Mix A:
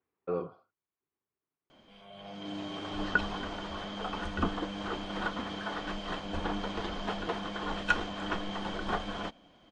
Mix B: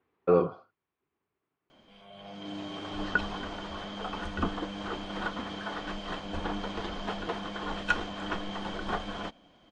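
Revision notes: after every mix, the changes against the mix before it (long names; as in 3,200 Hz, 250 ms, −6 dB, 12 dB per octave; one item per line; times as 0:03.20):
speech +10.5 dB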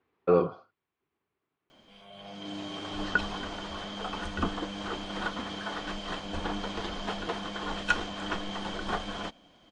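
master: add high-shelf EQ 4,100 Hz +7.5 dB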